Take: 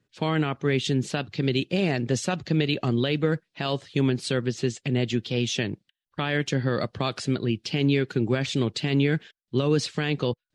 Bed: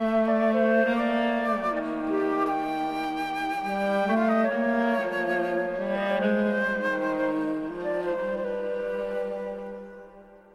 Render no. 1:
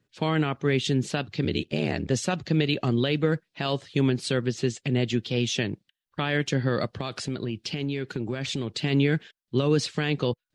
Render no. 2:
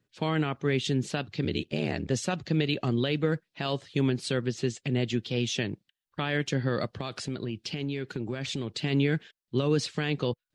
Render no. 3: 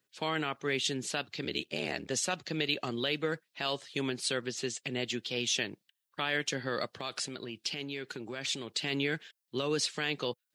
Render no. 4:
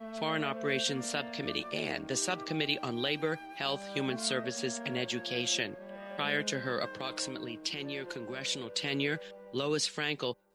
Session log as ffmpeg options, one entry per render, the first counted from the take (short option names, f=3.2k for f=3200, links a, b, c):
-filter_complex "[0:a]asettb=1/sr,asplit=3[a][b][c];[a]atrim=end=1.444[d];[b]atrim=start=1.44:end=2.11,asetpts=PTS-STARTPTS,afade=t=in:d=0.004:c=qsin,afade=t=out:st=0.666:d=0.004:c=qsin,aeval=exprs='val(0)*sin(2*PI*38*n/s)':c=same[e];[c]atrim=start=2.106[f];[d][e]acrossfade=d=0.004:c1=hsin:c2=qsin[g];[g][f]acrossfade=d=0.004:c1=qsin:c2=hsin,asettb=1/sr,asplit=3[h][i][j];[h]atrim=end=6.864[k];[i]atrim=start=6.86:end=8.83,asetpts=PTS-STARTPTS,afade=t=in:d=0.004:c=qsin,afade=t=out:st=1.966:d=0.004:c=qsin,acompressor=threshold=-25dB:ratio=6:attack=3.2:release=140:knee=1:detection=peak[l];[j]atrim=start=8.826[m];[k][l]acrossfade=d=0.004:c1=hsin:c2=qsin[n];[n][m]acrossfade=d=0.004:c1=qsin:c2=hsin"
-af "volume=-3dB"
-af "highpass=f=660:p=1,highshelf=f=7.1k:g=9"
-filter_complex "[1:a]volume=-18dB[a];[0:a][a]amix=inputs=2:normalize=0"